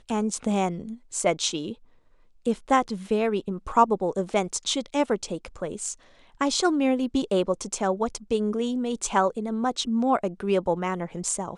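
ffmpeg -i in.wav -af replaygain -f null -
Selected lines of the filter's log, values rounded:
track_gain = +5.9 dB
track_peak = 0.332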